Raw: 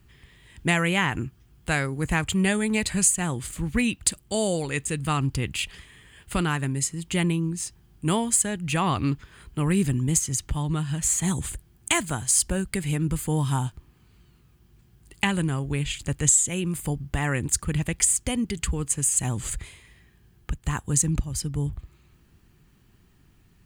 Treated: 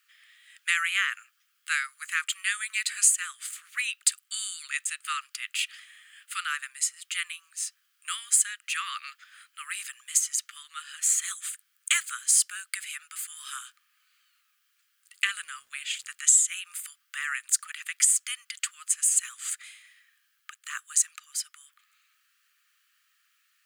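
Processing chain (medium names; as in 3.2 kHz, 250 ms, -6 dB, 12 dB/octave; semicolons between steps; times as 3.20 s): steep high-pass 1.2 kHz 96 dB/octave; 15.24–16.12 s: crackle 510 per s -57 dBFS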